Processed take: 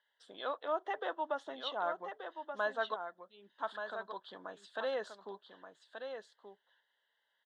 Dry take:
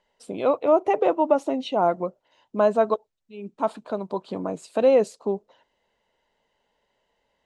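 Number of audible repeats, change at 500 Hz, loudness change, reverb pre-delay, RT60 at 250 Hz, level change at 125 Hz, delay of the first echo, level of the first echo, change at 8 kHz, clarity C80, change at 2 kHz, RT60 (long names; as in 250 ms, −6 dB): 1, −18.0 dB, −16.0 dB, no reverb audible, no reverb audible, below −25 dB, 1,179 ms, −7.5 dB, can't be measured, no reverb audible, −1.5 dB, no reverb audible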